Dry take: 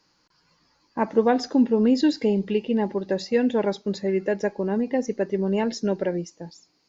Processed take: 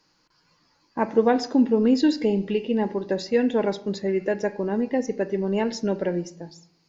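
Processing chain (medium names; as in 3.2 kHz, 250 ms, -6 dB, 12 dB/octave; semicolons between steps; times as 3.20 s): on a send: four-pole ladder low-pass 3.1 kHz, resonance 45% + reverberation RT60 0.65 s, pre-delay 3 ms, DRR 10.5 dB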